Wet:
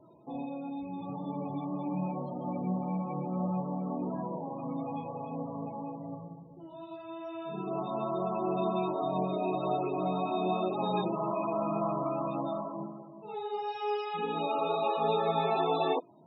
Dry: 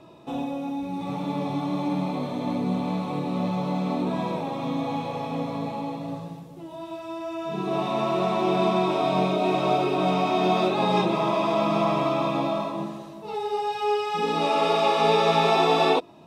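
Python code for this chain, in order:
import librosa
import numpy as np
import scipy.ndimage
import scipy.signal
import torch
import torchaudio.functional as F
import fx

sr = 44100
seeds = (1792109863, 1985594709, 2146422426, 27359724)

y = fx.comb(x, sr, ms=5.6, depth=0.54, at=(1.93, 3.6), fade=0.02)
y = fx.spec_topn(y, sr, count=32)
y = F.gain(torch.from_numpy(y), -8.0).numpy()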